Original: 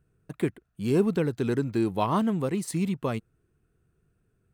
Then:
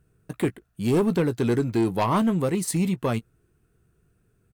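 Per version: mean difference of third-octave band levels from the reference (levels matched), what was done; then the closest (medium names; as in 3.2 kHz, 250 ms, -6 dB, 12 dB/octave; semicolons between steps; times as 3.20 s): 2.5 dB: doubling 17 ms -13 dB; sine folder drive 5 dB, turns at -11.5 dBFS; treble shelf 6.3 kHz +5 dB; trim -4.5 dB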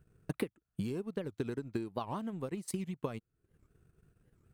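4.0 dB: compression 6:1, threshold -40 dBFS, peak gain reduction 21 dB; transient shaper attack +6 dB, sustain -10 dB; warped record 78 rpm, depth 250 cents; trim +2 dB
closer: first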